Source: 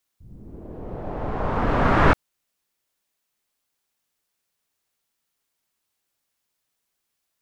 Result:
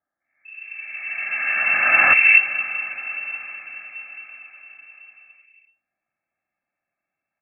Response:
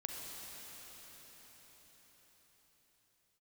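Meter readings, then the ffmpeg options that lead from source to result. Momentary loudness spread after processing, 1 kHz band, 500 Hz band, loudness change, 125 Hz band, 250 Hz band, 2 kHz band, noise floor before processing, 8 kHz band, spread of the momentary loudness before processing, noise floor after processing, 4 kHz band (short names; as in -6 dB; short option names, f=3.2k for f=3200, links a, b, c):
23 LU, -3.0 dB, -11.0 dB, +6.5 dB, under -20 dB, under -15 dB, +15.5 dB, -79 dBFS, n/a, 19 LU, under -85 dBFS, under -10 dB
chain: -filter_complex "[0:a]equalizer=f=160:w=1.8:g=-10.5,bandreject=f=1.6k:w=8.2,aecho=1:1:2:0.75,acrossover=split=730[a][b];[a]adelay=240[c];[c][b]amix=inputs=2:normalize=0,asplit=2[d][e];[1:a]atrim=start_sample=2205[f];[e][f]afir=irnorm=-1:irlink=0,volume=-6dB[g];[d][g]amix=inputs=2:normalize=0,lowpass=f=2.3k:t=q:w=0.5098,lowpass=f=2.3k:t=q:w=0.6013,lowpass=f=2.3k:t=q:w=0.9,lowpass=f=2.3k:t=q:w=2.563,afreqshift=-2700"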